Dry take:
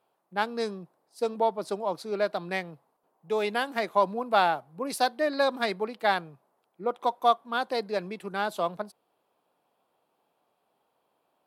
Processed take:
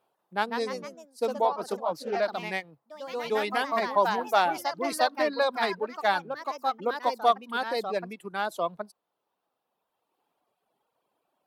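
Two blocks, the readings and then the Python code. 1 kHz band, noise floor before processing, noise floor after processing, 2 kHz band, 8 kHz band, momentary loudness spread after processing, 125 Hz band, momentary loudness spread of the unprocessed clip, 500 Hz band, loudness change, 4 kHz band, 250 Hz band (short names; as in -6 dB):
+1.0 dB, -75 dBFS, -82 dBFS, +1.0 dB, +1.0 dB, 11 LU, -3.0 dB, 9 LU, 0.0 dB, 0.0 dB, +0.5 dB, -1.5 dB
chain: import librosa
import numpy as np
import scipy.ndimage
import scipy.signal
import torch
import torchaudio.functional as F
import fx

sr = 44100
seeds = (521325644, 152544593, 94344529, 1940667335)

y = fx.dereverb_blind(x, sr, rt60_s=1.8)
y = fx.echo_pitch(y, sr, ms=189, semitones=2, count=3, db_per_echo=-6.0)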